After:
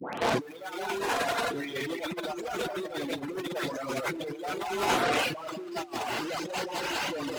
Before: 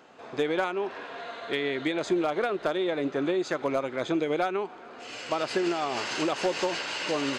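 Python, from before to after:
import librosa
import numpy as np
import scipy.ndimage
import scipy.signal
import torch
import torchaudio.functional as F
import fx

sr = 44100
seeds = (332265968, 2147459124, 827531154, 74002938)

p1 = fx.spec_delay(x, sr, highs='late', ms=379)
p2 = fx.peak_eq(p1, sr, hz=880.0, db=5.0, octaves=0.35)
p3 = fx.fuzz(p2, sr, gain_db=44.0, gate_db=-45.0)
p4 = p2 + F.gain(torch.from_numpy(p3), -10.0).numpy()
p5 = fx.highpass(p4, sr, hz=100.0, slope=6)
p6 = fx.low_shelf(p5, sr, hz=250.0, db=4.0)
p7 = fx.rev_gated(p6, sr, seeds[0], gate_ms=220, shape='rising', drr_db=1.0)
p8 = fx.transient(p7, sr, attack_db=-4, sustain_db=2)
p9 = fx.over_compress(p8, sr, threshold_db=-27.0, ratio=-0.5)
p10 = fx.dereverb_blind(p9, sr, rt60_s=0.98)
y = fx.band_squash(p10, sr, depth_pct=70)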